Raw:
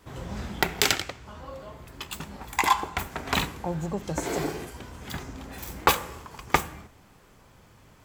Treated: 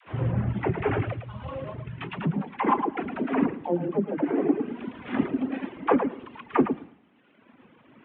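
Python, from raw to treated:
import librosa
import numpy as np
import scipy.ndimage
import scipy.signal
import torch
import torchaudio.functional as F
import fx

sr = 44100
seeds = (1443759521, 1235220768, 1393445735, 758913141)

y = fx.cvsd(x, sr, bps=16000)
y = fx.filter_sweep_highpass(y, sr, from_hz=110.0, to_hz=250.0, start_s=1.52, end_s=2.82, q=3.6)
y = fx.low_shelf(y, sr, hz=120.0, db=6.5)
y = fx.env_lowpass_down(y, sr, base_hz=2100.0, full_db=-24.5)
y = fx.echo_feedback(y, sr, ms=109, feedback_pct=26, wet_db=-5.0)
y = fx.dynamic_eq(y, sr, hz=370.0, q=0.7, threshold_db=-39.0, ratio=4.0, max_db=6)
y = fx.dispersion(y, sr, late='lows', ms=71.0, hz=420.0)
y = fx.rider(y, sr, range_db=4, speed_s=0.5)
y = fx.dereverb_blind(y, sr, rt60_s=1.3)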